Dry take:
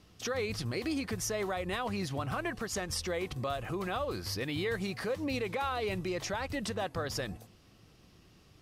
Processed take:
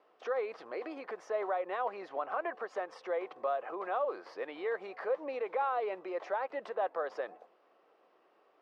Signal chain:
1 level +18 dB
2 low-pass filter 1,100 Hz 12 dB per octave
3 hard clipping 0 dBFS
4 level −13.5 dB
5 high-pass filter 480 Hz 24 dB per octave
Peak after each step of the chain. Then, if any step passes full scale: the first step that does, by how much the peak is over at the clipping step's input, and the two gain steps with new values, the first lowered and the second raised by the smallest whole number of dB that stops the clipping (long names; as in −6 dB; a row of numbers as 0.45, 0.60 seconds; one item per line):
−4.5, −6.0, −6.0, −19.5, −22.0 dBFS
no step passes full scale